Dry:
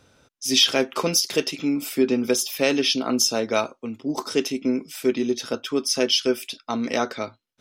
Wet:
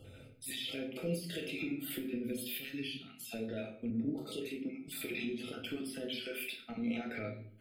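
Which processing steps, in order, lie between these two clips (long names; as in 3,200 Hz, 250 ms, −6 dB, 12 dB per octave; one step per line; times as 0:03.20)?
time-frequency cells dropped at random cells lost 27%
0:02.58–0:03.21: guitar amp tone stack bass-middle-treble 6-0-2
harmonic and percussive parts rebalanced percussive −10 dB
0:06.21–0:06.70: low-shelf EQ 440 Hz −10.5 dB
downward compressor 6 to 1, threshold −38 dBFS, peak gain reduction 20.5 dB
brickwall limiter −36 dBFS, peak gain reduction 9.5 dB
phaser with its sweep stopped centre 2,500 Hz, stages 4
convolution reverb RT60 0.55 s, pre-delay 6 ms, DRR 1 dB
0:03.90–0:04.88: multiband upward and downward expander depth 70%
level +6.5 dB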